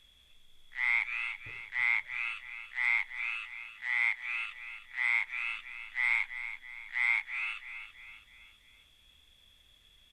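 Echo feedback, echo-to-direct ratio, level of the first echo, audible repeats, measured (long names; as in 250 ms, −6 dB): 46%, −10.0 dB, −11.0 dB, 4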